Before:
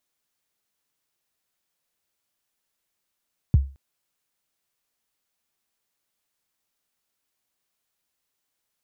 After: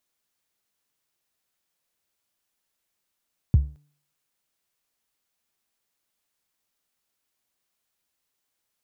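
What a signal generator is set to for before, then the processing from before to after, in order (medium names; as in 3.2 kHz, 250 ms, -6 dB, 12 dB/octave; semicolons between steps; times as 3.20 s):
kick drum length 0.22 s, from 160 Hz, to 68 Hz, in 21 ms, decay 0.32 s, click off, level -9 dB
de-hum 146.3 Hz, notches 13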